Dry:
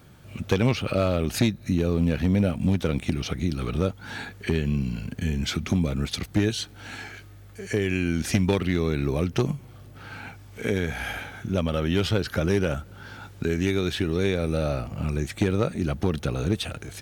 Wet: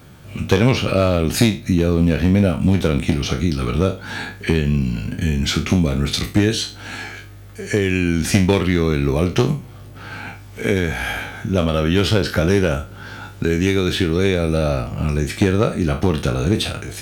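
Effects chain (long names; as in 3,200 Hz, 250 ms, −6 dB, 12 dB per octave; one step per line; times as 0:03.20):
peak hold with a decay on every bin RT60 0.32 s
level +6.5 dB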